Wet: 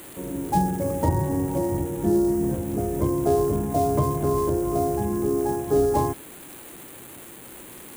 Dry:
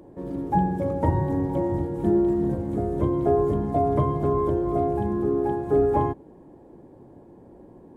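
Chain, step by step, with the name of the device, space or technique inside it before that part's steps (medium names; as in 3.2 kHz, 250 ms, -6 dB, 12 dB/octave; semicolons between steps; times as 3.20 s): budget class-D amplifier (dead-time distortion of 0.099 ms; zero-crossing glitches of -23 dBFS)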